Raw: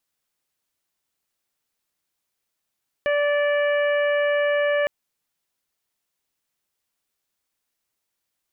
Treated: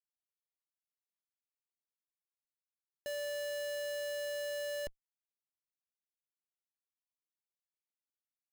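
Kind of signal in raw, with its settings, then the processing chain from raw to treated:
steady additive tone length 1.81 s, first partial 582 Hz, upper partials -14/-7/-14/-17.5 dB, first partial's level -19 dB
limiter -27 dBFS; Schmitt trigger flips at -49 dBFS

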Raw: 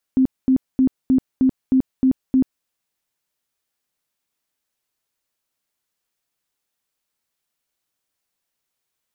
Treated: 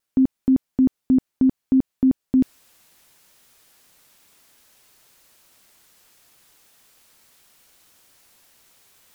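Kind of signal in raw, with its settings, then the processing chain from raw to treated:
tone bursts 261 Hz, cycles 22, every 0.31 s, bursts 8, -11.5 dBFS
reverse; upward compressor, threshold -37 dBFS; reverse; vibrato 0.71 Hz 11 cents

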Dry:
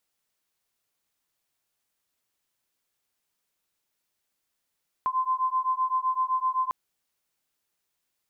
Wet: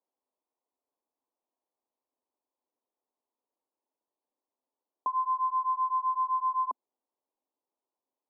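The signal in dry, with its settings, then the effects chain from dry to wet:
beating tones 1030 Hz, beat 7.8 Hz, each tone -26.5 dBFS 1.65 s
elliptic band-pass 250–1000 Hz

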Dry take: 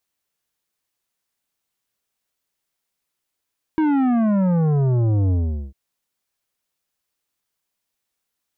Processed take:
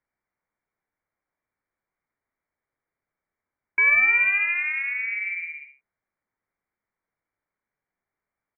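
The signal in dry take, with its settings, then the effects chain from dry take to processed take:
sub drop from 320 Hz, over 1.95 s, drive 11 dB, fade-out 0.42 s, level -16.5 dB
HPF 230 Hz 24 dB/oct; on a send: echo 82 ms -9.5 dB; on the sum: inverted band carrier 2600 Hz

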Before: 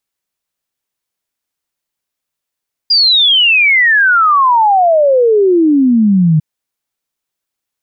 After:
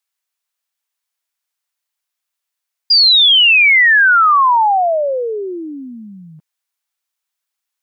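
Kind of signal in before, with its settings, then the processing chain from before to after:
log sweep 4900 Hz -> 150 Hz 3.50 s -6 dBFS
HPF 830 Hz 12 dB/oct

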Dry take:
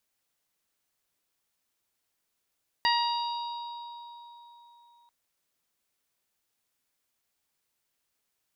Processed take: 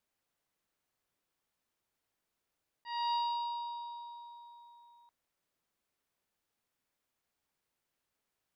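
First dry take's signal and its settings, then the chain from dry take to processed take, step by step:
additive tone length 2.24 s, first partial 947 Hz, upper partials -2/-7/-8/-4.5 dB, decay 3.75 s, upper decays 0.62/1.63/3.33/1.92 s, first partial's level -23.5 dB
high shelf 2700 Hz -9 dB; auto swell 0.295 s

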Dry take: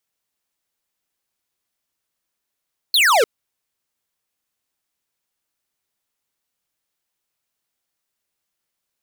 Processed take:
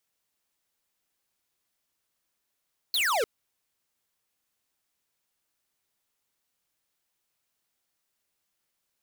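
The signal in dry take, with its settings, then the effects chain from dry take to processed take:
laser zap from 4500 Hz, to 410 Hz, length 0.30 s square, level -14 dB
soft clip -25.5 dBFS

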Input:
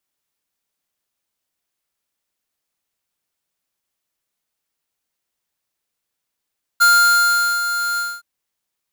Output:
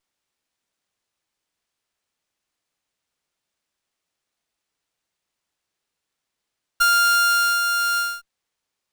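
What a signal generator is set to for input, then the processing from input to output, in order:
ADSR square 1400 Hz, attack 20 ms, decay 0.789 s, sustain -10 dB, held 1.18 s, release 0.238 s -11 dBFS
notches 60/120/180/240 Hz; compressor, threshold -17 dBFS; running maximum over 3 samples

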